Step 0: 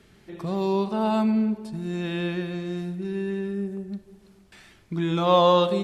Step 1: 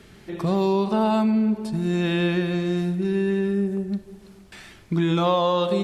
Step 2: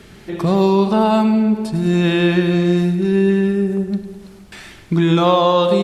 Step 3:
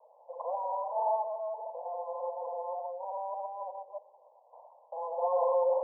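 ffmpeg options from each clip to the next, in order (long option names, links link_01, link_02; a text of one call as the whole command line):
ffmpeg -i in.wav -af "acompressor=threshold=-24dB:ratio=12,volume=7dB" out.wav
ffmpeg -i in.wav -af "aecho=1:1:103|206|309|412|515|618:0.237|0.128|0.0691|0.0373|0.0202|0.0109,volume=6.5dB" out.wav
ffmpeg -i in.wav -af "flanger=delay=0.9:depth=8.4:regen=45:speed=1.7:shape=sinusoidal,asoftclip=type=hard:threshold=-23.5dB,asuperpass=centerf=710:order=20:qfactor=1.3" out.wav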